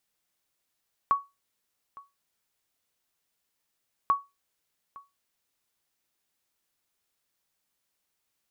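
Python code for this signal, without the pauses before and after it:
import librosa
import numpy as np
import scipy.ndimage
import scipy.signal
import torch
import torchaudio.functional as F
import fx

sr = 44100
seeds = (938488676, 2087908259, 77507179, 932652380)

y = fx.sonar_ping(sr, hz=1120.0, decay_s=0.22, every_s=2.99, pings=2, echo_s=0.86, echo_db=-22.5, level_db=-15.0)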